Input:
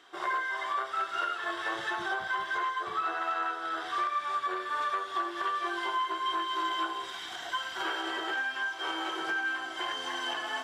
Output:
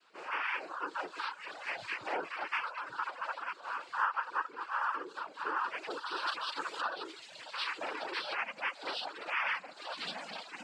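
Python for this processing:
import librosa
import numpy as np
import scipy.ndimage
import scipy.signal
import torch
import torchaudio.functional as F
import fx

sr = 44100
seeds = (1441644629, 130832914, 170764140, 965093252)

y = fx.resonator_bank(x, sr, root=48, chord='fifth', decay_s=0.3)
y = fx.noise_vocoder(y, sr, seeds[0], bands=8)
y = fx.high_shelf(y, sr, hz=3200.0, db=8.0, at=(5.9, 6.81))
y = fx.dereverb_blind(y, sr, rt60_s=1.0)
y = fx.rider(y, sr, range_db=3, speed_s=0.5)
y = y * librosa.db_to_amplitude(5.0)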